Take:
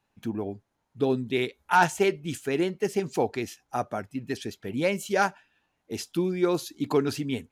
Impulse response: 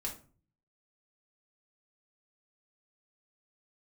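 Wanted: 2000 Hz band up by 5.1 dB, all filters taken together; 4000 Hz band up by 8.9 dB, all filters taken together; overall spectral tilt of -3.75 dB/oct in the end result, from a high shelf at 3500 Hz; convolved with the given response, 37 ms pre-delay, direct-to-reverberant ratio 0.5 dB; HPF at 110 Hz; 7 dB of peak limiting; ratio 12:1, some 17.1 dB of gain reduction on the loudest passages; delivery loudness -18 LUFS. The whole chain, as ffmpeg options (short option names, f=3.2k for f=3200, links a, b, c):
-filter_complex "[0:a]highpass=110,equalizer=f=2k:t=o:g=4,highshelf=f=3.5k:g=6,equalizer=f=4k:t=o:g=6,acompressor=threshold=-30dB:ratio=12,alimiter=limit=-23.5dB:level=0:latency=1,asplit=2[a][b];[1:a]atrim=start_sample=2205,adelay=37[c];[b][c]afir=irnorm=-1:irlink=0,volume=-1dB[d];[a][d]amix=inputs=2:normalize=0,volume=16dB"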